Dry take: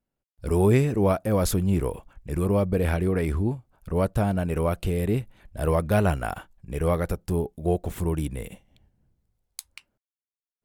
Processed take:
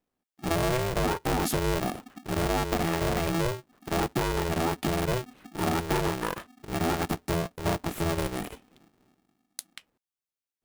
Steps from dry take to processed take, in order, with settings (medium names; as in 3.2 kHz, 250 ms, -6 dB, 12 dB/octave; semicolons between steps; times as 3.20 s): compression, threshold -23 dBFS, peak gain reduction 8.5 dB; polarity switched at an audio rate 250 Hz